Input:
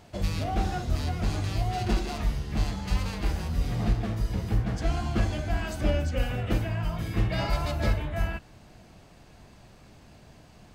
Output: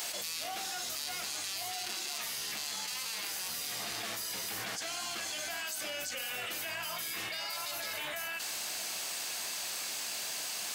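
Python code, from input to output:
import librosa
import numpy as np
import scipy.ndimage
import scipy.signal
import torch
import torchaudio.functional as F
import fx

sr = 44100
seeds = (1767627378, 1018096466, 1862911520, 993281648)

y = fx.highpass(x, sr, hz=300.0, slope=6)
y = np.diff(y, prepend=0.0)
y = fx.env_flatten(y, sr, amount_pct=100)
y = y * librosa.db_to_amplitude(4.0)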